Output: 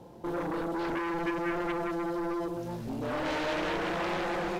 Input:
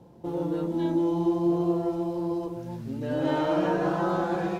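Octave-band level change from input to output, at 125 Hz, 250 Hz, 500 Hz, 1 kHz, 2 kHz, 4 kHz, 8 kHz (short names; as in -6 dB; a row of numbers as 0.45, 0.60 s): -8.5 dB, -7.0 dB, -5.5 dB, -2.0 dB, +4.5 dB, +3.5 dB, n/a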